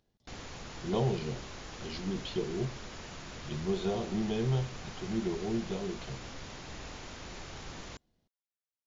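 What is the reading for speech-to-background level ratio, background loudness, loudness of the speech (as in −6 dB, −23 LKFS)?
10.0 dB, −45.0 LKFS, −35.0 LKFS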